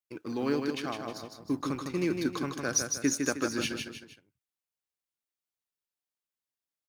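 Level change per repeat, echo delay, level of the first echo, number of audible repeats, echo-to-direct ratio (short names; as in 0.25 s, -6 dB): -7.5 dB, 0.156 s, -5.0 dB, 3, -4.0 dB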